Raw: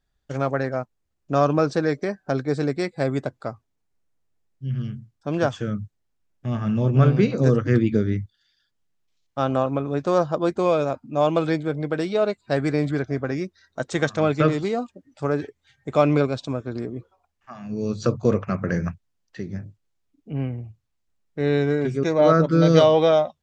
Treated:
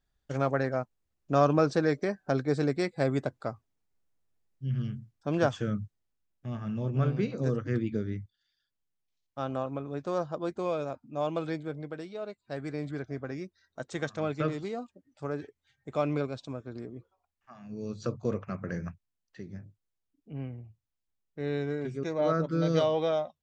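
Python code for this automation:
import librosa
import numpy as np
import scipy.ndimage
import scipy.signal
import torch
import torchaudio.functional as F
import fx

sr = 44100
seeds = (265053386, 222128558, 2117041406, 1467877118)

y = fx.gain(x, sr, db=fx.line((5.75, -4.0), (6.61, -11.0), (11.74, -11.0), (12.14, -17.5), (13.07, -11.0)))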